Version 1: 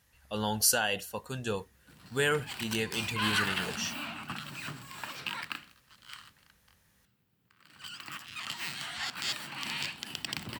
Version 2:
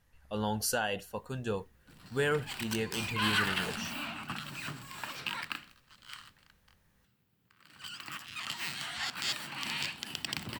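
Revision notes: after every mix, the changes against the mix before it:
speech: add treble shelf 2.1 kHz -9 dB; master: remove high-pass 43 Hz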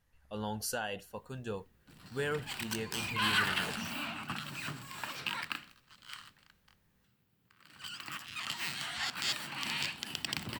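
speech -5.0 dB

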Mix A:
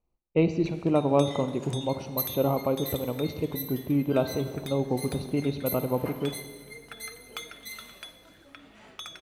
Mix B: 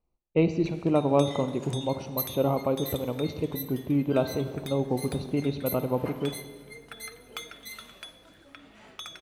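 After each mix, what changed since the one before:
second sound: send -8.5 dB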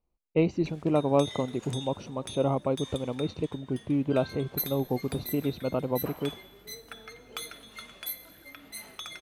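speech: send off; second sound: entry +2.40 s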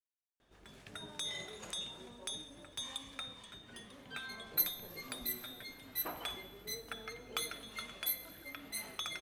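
speech: muted

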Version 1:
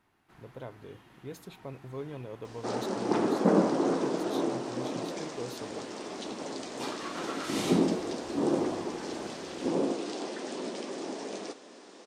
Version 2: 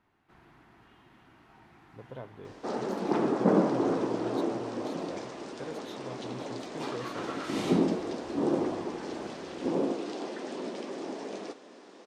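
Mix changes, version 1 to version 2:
speech: entry +1.55 s; master: add treble shelf 5.1 kHz -10.5 dB

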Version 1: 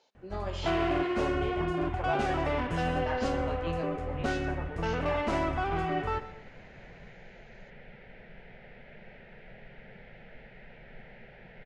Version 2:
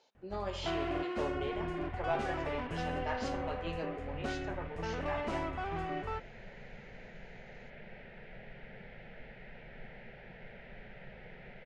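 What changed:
first sound -5.0 dB; second sound: entry -1.15 s; reverb: off

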